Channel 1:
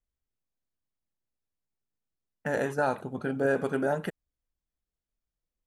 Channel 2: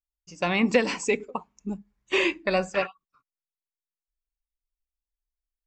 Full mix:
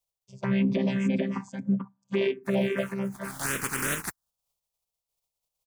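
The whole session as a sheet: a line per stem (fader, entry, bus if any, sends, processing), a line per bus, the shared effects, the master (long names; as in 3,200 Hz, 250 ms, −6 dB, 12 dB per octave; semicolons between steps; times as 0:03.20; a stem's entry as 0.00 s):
+2.5 dB, 0.00 s, no send, no echo send, compressing power law on the bin magnitudes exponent 0.28; automatic ducking −23 dB, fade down 0.60 s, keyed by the second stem
+3.0 dB, 0.00 s, no send, echo send −5 dB, channel vocoder with a chord as carrier bare fifth, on C3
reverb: not used
echo: single-tap delay 440 ms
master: phaser swept by the level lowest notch 280 Hz, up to 1,400 Hz, full sweep at −17 dBFS; brickwall limiter −17 dBFS, peak gain reduction 10 dB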